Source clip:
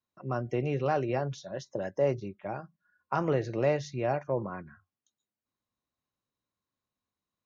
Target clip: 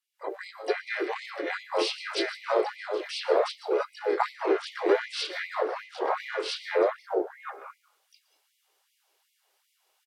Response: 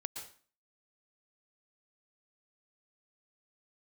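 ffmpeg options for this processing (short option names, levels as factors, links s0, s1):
-filter_complex "[0:a]aecho=1:1:966:0.501,acrossover=split=330|1400[s0][s1][s2];[s0]aeval=exprs='clip(val(0),-1,0.00668)':c=same[s3];[s3][s1][s2]amix=inputs=3:normalize=0,highpass=f=65:w=0.5412,highpass=f=65:w=1.3066,asplit=4[s4][s5][s6][s7];[s5]asetrate=35002,aresample=44100,atempo=1.25992,volume=0.447[s8];[s6]asetrate=52444,aresample=44100,atempo=0.840896,volume=0.631[s9];[s7]asetrate=88200,aresample=44100,atempo=0.5,volume=0.178[s10];[s4][s8][s9][s10]amix=inputs=4:normalize=0,bass=f=250:g=-8,treble=f=4000:g=2,acompressor=threshold=0.0178:ratio=6,asetrate=32667,aresample=44100,dynaudnorm=f=140:g=3:m=5.31,asplit=2[s11][s12];[s12]equalizer=f=910:t=o:w=0.28:g=-11.5[s13];[1:a]atrim=start_sample=2205[s14];[s13][s14]afir=irnorm=-1:irlink=0,volume=0.447[s15];[s11][s15]amix=inputs=2:normalize=0,afftfilt=real='re*gte(b*sr/1024,300*pow(2000/300,0.5+0.5*sin(2*PI*2.6*pts/sr)))':imag='im*gte(b*sr/1024,300*pow(2000/300,0.5+0.5*sin(2*PI*2.6*pts/sr)))':win_size=1024:overlap=0.75"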